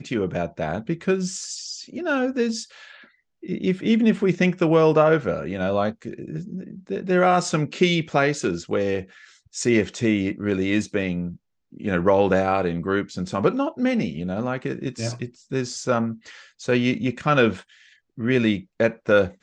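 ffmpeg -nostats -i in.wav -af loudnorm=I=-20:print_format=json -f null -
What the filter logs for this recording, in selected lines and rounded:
"input_i" : "-22.7",
"input_tp" : "-5.3",
"input_lra" : "4.0",
"input_thresh" : "-33.3",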